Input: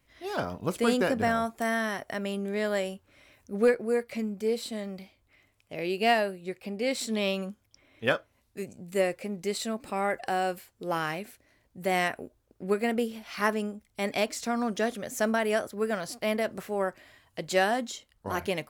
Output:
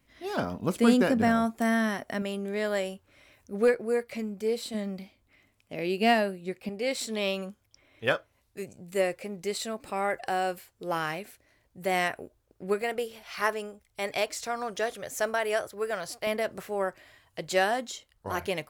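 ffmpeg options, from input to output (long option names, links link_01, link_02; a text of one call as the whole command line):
ffmpeg -i in.wav -af "asetnsamples=nb_out_samples=441:pad=0,asendcmd='2.22 equalizer g -2.5;4.74 equalizer g 6;6.69 equalizer g -5.5;12.82 equalizer g -14.5;16.27 equalizer g -6',equalizer=frequency=230:width_type=o:width=0.61:gain=7" out.wav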